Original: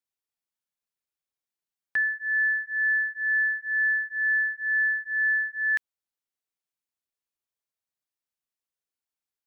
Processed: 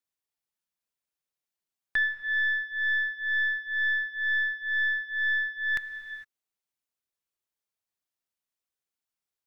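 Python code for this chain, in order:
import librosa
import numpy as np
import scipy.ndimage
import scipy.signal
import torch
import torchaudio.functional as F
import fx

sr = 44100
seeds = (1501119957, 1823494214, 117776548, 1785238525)

y = fx.tracing_dist(x, sr, depth_ms=0.04)
y = fx.rev_gated(y, sr, seeds[0], gate_ms=480, shape='flat', drr_db=10.0)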